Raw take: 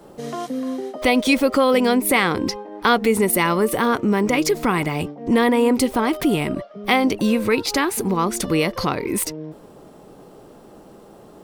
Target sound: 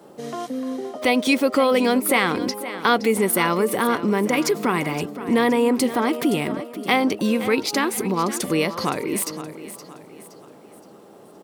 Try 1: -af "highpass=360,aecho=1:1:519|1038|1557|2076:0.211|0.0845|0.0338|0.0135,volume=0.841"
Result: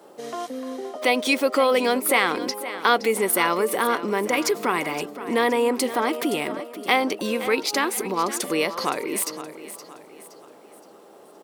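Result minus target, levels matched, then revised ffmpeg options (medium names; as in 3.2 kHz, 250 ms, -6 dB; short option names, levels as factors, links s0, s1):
125 Hz band -9.0 dB
-af "highpass=150,aecho=1:1:519|1038|1557|2076:0.211|0.0845|0.0338|0.0135,volume=0.841"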